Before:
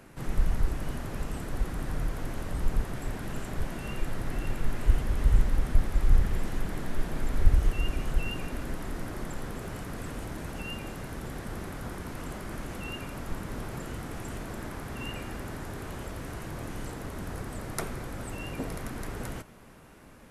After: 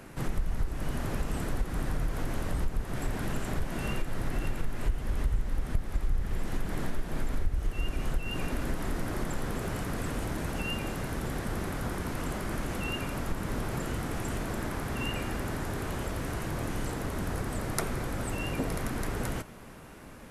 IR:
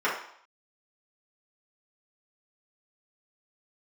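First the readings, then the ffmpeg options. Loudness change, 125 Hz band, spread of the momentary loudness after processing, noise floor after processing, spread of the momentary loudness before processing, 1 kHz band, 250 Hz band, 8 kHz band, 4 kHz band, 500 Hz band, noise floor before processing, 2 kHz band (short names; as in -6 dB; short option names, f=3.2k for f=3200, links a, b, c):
0.0 dB, -0.5 dB, 3 LU, -46 dBFS, 11 LU, +3.0 dB, +2.5 dB, +3.0 dB, +2.5 dB, +2.5 dB, -50 dBFS, +2.5 dB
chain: -af "acompressor=threshold=-30dB:ratio=4,volume=4.5dB"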